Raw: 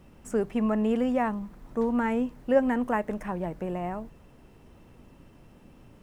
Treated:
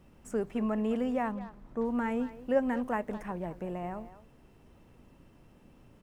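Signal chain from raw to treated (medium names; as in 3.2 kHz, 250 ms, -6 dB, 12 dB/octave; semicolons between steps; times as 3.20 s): 1.31–1.84 s: treble shelf 6.4 kHz -> 4.6 kHz -10 dB; speakerphone echo 210 ms, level -14 dB; trim -5 dB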